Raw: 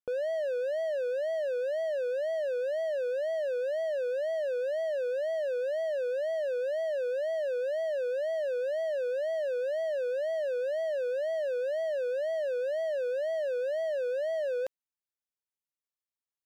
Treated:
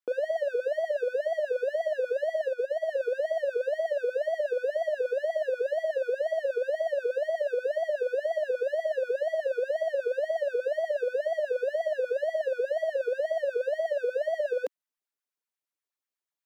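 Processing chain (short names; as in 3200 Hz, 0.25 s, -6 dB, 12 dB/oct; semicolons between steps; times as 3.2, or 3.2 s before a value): LFO high-pass sine 8.3 Hz 270–1700 Hz; 2.47–2.89 upward expander 1.5:1, over -38 dBFS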